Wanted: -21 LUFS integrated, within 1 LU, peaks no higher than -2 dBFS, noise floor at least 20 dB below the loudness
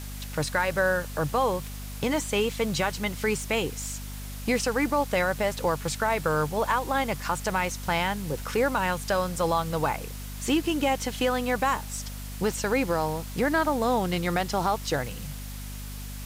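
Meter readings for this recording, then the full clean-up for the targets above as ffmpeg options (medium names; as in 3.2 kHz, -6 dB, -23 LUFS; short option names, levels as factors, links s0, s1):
hum 50 Hz; highest harmonic 250 Hz; hum level -35 dBFS; noise floor -37 dBFS; noise floor target -47 dBFS; loudness -27.0 LUFS; peak level -11.5 dBFS; loudness target -21.0 LUFS
-> -af "bandreject=f=50:t=h:w=4,bandreject=f=100:t=h:w=4,bandreject=f=150:t=h:w=4,bandreject=f=200:t=h:w=4,bandreject=f=250:t=h:w=4"
-af "afftdn=nr=10:nf=-37"
-af "volume=2"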